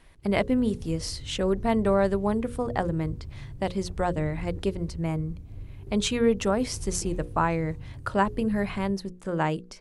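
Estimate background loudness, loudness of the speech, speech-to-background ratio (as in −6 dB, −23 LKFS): −41.5 LKFS, −27.5 LKFS, 14.0 dB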